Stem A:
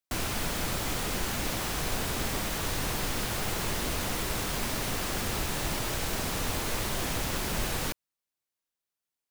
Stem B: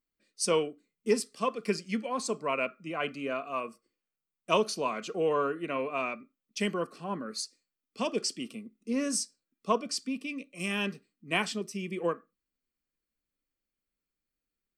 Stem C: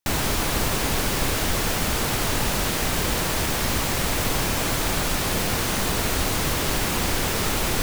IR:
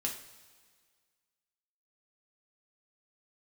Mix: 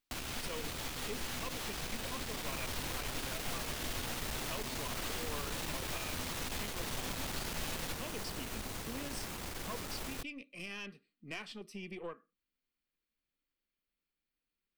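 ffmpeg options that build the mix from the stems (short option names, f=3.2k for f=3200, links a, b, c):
-filter_complex "[0:a]volume=-1.5dB,asplit=2[a][b];[b]volume=-13dB[c];[1:a]equalizer=f=6.9k:w=1.6:g=-11.5,volume=-1dB[d];[2:a]adelay=2400,volume=-16dB[e];[a][d]amix=inputs=2:normalize=0,equalizer=f=3.3k:w=0.7:g=7,acompressor=threshold=-43dB:ratio=2.5,volume=0dB[f];[3:a]atrim=start_sample=2205[g];[c][g]afir=irnorm=-1:irlink=0[h];[e][f][h]amix=inputs=3:normalize=0,aeval=exprs='(tanh(50.1*val(0)+0.5)-tanh(0.5))/50.1':c=same"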